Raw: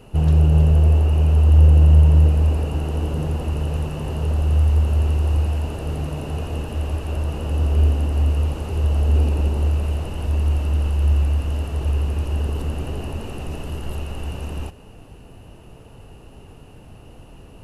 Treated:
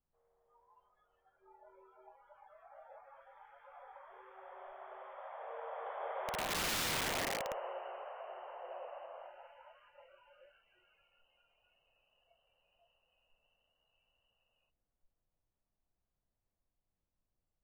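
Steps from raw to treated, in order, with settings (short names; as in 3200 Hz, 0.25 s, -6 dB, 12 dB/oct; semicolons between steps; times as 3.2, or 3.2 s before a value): Doppler pass-by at 6.76, 28 m/s, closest 4.9 m; mistuned SSB +300 Hz 200–2200 Hz; added noise brown -68 dBFS; spectral noise reduction 23 dB; wrapped overs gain 36 dB; gain +5 dB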